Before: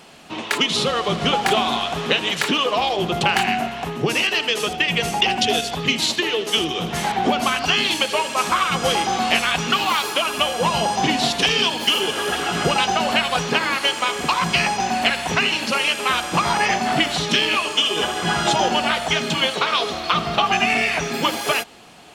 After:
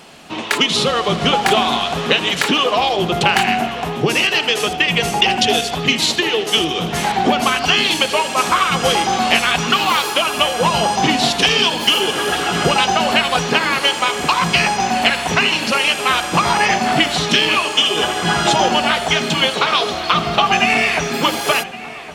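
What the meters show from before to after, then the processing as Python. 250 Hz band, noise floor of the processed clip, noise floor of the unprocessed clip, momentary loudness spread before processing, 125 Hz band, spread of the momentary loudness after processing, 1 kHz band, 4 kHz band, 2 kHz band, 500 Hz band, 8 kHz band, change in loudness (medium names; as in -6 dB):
+4.0 dB, -25 dBFS, -30 dBFS, 4 LU, +4.0 dB, 4 LU, +4.0 dB, +4.0 dB, +4.0 dB, +4.0 dB, +4.0 dB, +4.0 dB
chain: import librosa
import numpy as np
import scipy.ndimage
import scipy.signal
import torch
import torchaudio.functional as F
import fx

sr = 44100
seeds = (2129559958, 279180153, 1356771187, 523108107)

y = fx.echo_filtered(x, sr, ms=1114, feedback_pct=53, hz=3300.0, wet_db=-16)
y = y * 10.0 ** (4.0 / 20.0)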